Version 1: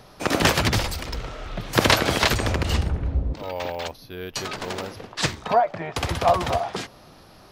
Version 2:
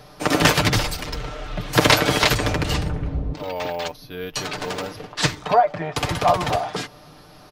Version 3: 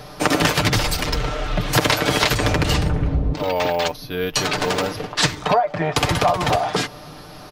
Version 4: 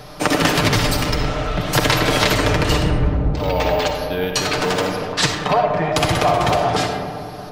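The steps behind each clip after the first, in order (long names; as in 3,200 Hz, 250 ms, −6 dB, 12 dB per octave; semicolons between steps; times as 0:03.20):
comb filter 6.7 ms, depth 56%; level +1.5 dB
downward compressor 6 to 1, threshold −22 dBFS, peak gain reduction 12 dB; level +7.5 dB
convolution reverb RT60 2.4 s, pre-delay 20 ms, DRR 3 dB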